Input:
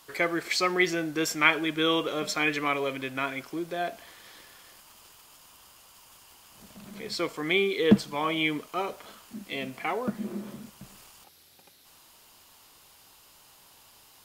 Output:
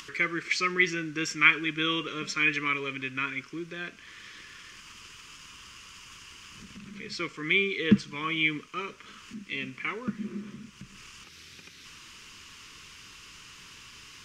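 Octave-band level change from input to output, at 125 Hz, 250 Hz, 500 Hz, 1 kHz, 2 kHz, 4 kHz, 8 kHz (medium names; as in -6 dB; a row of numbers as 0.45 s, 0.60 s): -0.5 dB, -2.5 dB, -7.5 dB, -4.0 dB, +2.5 dB, -1.0 dB, -3.0 dB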